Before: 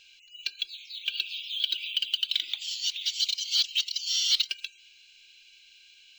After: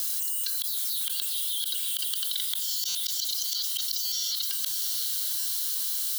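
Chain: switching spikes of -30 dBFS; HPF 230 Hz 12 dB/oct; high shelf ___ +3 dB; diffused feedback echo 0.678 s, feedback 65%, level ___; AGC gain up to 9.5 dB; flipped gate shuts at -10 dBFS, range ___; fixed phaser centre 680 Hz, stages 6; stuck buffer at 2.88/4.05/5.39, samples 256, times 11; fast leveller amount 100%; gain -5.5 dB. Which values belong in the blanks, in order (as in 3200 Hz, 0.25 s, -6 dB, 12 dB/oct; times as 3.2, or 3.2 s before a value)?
11000 Hz, -13 dB, -29 dB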